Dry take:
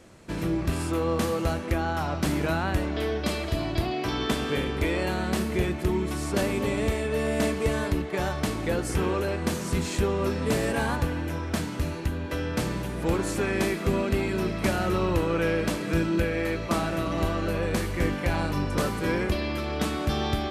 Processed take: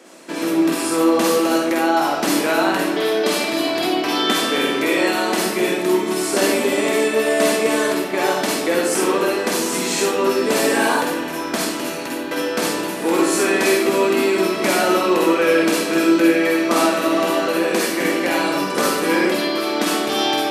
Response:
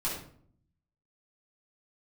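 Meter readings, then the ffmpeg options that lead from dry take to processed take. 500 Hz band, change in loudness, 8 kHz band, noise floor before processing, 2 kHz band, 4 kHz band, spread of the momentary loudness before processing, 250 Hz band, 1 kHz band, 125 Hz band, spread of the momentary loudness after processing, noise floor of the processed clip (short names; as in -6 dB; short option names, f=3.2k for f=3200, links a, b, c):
+10.0 dB, +9.0 dB, +14.0 dB, -33 dBFS, +10.5 dB, +12.5 dB, 4 LU, +8.5 dB, +11.0 dB, -8.5 dB, 5 LU, -26 dBFS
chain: -filter_complex "[0:a]highpass=f=260:w=0.5412,highpass=f=260:w=1.3066,asplit=2[a][b];[1:a]atrim=start_sample=2205,highshelf=f=3.3k:g=11.5,adelay=47[c];[b][c]afir=irnorm=-1:irlink=0,volume=-7.5dB[d];[a][d]amix=inputs=2:normalize=0,volume=7.5dB"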